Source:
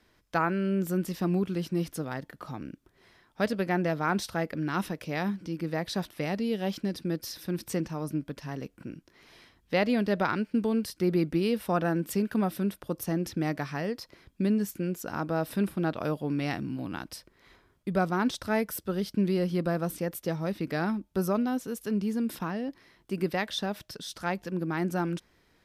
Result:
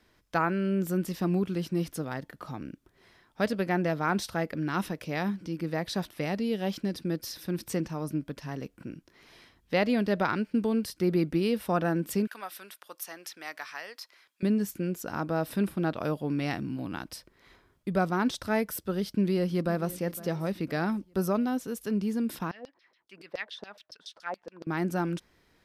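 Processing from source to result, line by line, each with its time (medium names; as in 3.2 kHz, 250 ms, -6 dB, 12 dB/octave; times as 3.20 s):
12.27–14.43 s: high-pass 1.1 kHz
19.03–20.01 s: echo throw 510 ms, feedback 40%, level -18 dB
22.51–24.67 s: LFO band-pass saw down 7.1 Hz 460–5400 Hz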